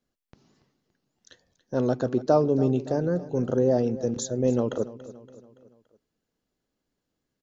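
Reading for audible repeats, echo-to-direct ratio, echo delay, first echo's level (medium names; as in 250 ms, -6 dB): 3, -15.5 dB, 284 ms, -16.5 dB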